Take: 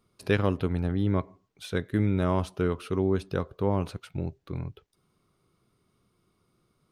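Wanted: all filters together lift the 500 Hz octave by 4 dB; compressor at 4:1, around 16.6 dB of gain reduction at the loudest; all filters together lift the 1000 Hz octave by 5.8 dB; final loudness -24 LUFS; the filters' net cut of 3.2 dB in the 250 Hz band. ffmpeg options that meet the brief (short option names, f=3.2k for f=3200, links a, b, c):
-af "equalizer=f=250:t=o:g=-7.5,equalizer=f=500:t=o:g=6.5,equalizer=f=1k:t=o:g=5.5,acompressor=threshold=-38dB:ratio=4,volume=17.5dB"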